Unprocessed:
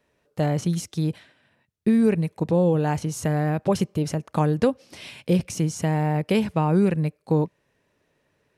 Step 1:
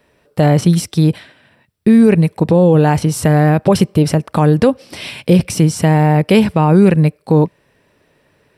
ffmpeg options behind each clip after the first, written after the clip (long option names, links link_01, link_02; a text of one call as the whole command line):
ffmpeg -i in.wav -af "bandreject=frequency=6600:width=5.1,alimiter=level_in=13.5dB:limit=-1dB:release=50:level=0:latency=1,volume=-1dB" out.wav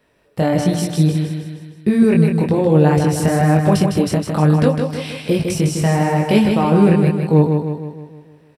ffmpeg -i in.wav -af "flanger=delay=19:depth=5.1:speed=1.1,aecho=1:1:156|312|468|624|780|936|1092:0.531|0.276|0.144|0.0746|0.0388|0.0202|0.0105,volume=-1dB" out.wav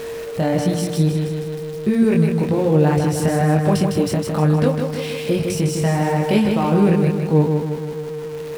ffmpeg -i in.wav -af "aeval=exprs='val(0)+0.5*0.0398*sgn(val(0))':channel_layout=same,aeval=exprs='val(0)+0.0708*sin(2*PI*460*n/s)':channel_layout=same,volume=-3.5dB" out.wav